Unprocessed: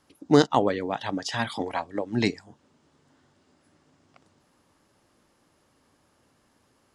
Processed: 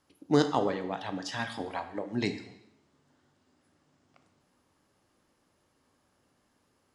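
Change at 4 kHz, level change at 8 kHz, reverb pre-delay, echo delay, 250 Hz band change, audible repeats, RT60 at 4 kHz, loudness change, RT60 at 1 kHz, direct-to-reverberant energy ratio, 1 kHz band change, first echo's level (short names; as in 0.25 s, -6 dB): -6.0 dB, -6.0 dB, 7 ms, none, -5.5 dB, none, 0.80 s, -6.0 dB, 0.80 s, 7.5 dB, -6.0 dB, none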